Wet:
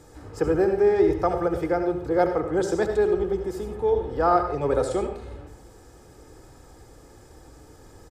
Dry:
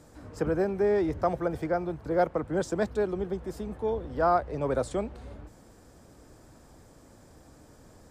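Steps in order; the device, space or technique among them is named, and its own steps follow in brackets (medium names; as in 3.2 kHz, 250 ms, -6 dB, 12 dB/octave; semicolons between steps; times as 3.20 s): microphone above a desk (comb 2.4 ms, depth 50%; reverberation RT60 0.50 s, pre-delay 64 ms, DRR 6 dB); trim +3 dB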